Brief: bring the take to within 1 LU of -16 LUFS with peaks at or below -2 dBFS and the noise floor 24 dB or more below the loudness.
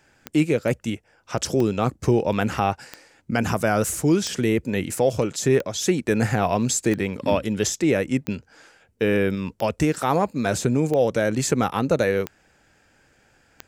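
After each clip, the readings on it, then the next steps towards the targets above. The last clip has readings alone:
clicks found 11; loudness -23.0 LUFS; peak level -7.0 dBFS; loudness target -16.0 LUFS
-> de-click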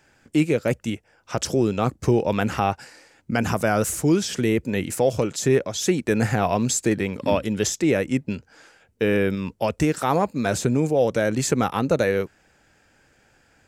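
clicks found 0; loudness -23.0 LUFS; peak level -7.0 dBFS; loudness target -16.0 LUFS
-> trim +7 dB; peak limiter -2 dBFS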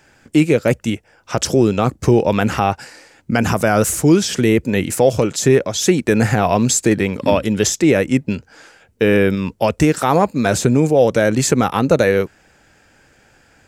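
loudness -16.0 LUFS; peak level -2.0 dBFS; noise floor -54 dBFS

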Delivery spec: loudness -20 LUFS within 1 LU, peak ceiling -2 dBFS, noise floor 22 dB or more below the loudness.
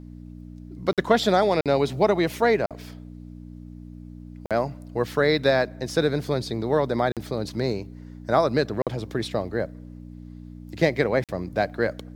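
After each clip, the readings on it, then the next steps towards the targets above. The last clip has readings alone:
dropouts 7; longest dropout 47 ms; hum 60 Hz; highest harmonic 300 Hz; hum level -39 dBFS; loudness -24.5 LUFS; peak level -4.0 dBFS; loudness target -20.0 LUFS
-> interpolate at 0.93/1.61/2.66/4.46/7.12/8.82/11.24 s, 47 ms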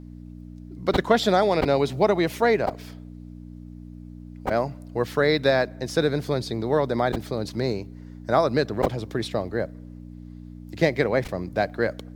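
dropouts 0; hum 60 Hz; highest harmonic 300 Hz; hum level -39 dBFS
-> de-hum 60 Hz, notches 5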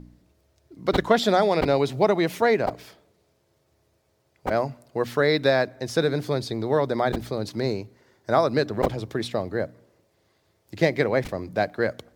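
hum not found; loudness -24.5 LUFS; peak level -4.5 dBFS; loudness target -20.0 LUFS
-> trim +4.5 dB; peak limiter -2 dBFS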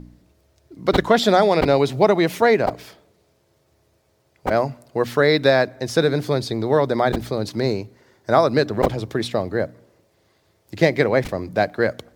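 loudness -20.0 LUFS; peak level -2.0 dBFS; noise floor -64 dBFS

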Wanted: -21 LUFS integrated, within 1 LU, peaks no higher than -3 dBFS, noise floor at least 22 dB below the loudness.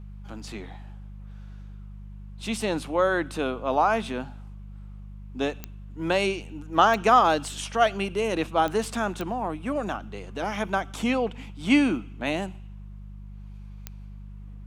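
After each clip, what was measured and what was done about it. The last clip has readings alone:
clicks found 5; hum 50 Hz; highest harmonic 200 Hz; hum level -38 dBFS; loudness -25.5 LUFS; peak level -6.5 dBFS; loudness target -21.0 LUFS
-> de-click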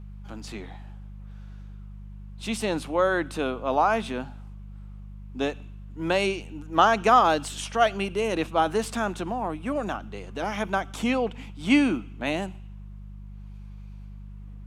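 clicks found 0; hum 50 Hz; highest harmonic 200 Hz; hum level -38 dBFS
-> de-hum 50 Hz, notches 4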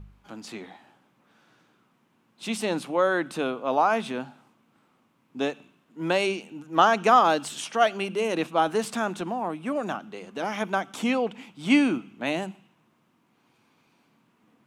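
hum not found; loudness -25.5 LUFS; peak level -6.5 dBFS; loudness target -21.0 LUFS
-> trim +4.5 dB; peak limiter -3 dBFS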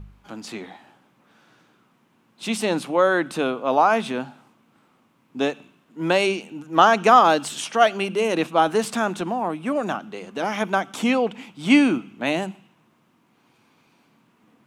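loudness -21.0 LUFS; peak level -3.0 dBFS; noise floor -63 dBFS

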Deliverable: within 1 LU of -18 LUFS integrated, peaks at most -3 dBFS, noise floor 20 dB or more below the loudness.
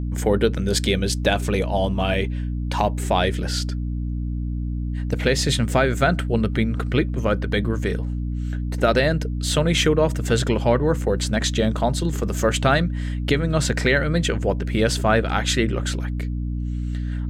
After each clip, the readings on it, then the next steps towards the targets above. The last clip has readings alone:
hum 60 Hz; highest harmonic 300 Hz; hum level -23 dBFS; loudness -22.0 LUFS; peak level -6.0 dBFS; loudness target -18.0 LUFS
-> hum notches 60/120/180/240/300 Hz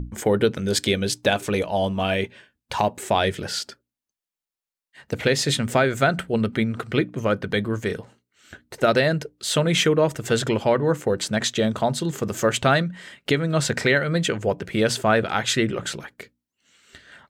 hum not found; loudness -22.5 LUFS; peak level -6.0 dBFS; loudness target -18.0 LUFS
-> trim +4.5 dB; peak limiter -3 dBFS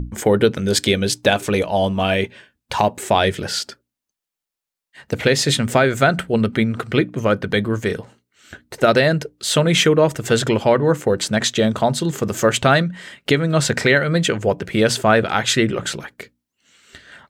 loudness -18.0 LUFS; peak level -3.0 dBFS; noise floor -86 dBFS

